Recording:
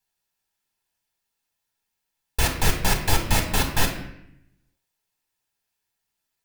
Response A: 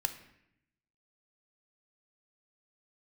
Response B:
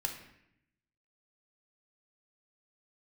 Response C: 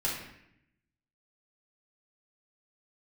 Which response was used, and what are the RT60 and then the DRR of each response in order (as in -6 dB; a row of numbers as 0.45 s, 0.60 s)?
B; 0.75 s, 0.75 s, 0.75 s; 8.0 dB, 2.5 dB, -6.0 dB